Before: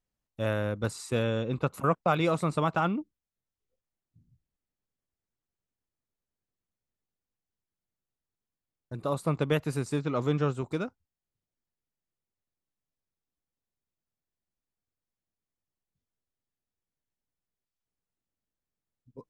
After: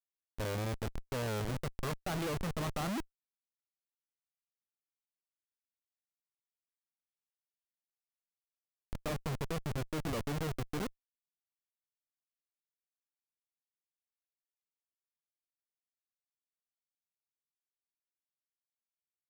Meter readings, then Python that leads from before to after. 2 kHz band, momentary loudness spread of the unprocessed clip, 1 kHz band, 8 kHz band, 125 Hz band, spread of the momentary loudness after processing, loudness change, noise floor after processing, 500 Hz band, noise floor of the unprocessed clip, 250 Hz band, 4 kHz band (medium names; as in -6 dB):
-7.0 dB, 8 LU, -10.0 dB, -1.5 dB, -7.0 dB, 5 LU, -8.5 dB, under -85 dBFS, -10.0 dB, under -85 dBFS, -8.5 dB, -3.5 dB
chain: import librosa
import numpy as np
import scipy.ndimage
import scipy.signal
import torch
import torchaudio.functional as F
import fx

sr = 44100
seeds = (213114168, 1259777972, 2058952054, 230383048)

y = fx.wow_flutter(x, sr, seeds[0], rate_hz=2.1, depth_cents=120.0)
y = fx.schmitt(y, sr, flips_db=-31.5)